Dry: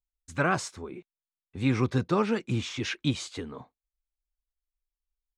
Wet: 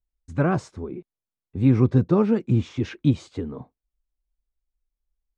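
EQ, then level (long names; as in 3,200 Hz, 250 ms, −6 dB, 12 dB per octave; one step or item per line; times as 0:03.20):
low-pass filter 9,200 Hz 12 dB per octave
tilt shelving filter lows +9.5 dB, about 900 Hz
0.0 dB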